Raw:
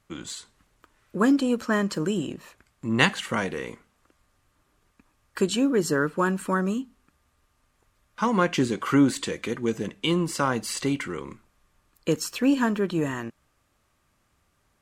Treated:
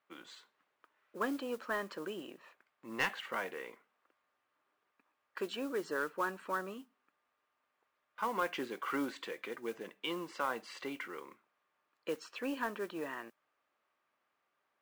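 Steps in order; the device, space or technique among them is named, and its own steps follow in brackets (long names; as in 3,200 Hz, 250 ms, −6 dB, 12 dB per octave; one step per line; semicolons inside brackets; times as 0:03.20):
carbon microphone (band-pass filter 480–2,900 Hz; soft clipping −14 dBFS, distortion −17 dB; noise that follows the level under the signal 21 dB)
level −8 dB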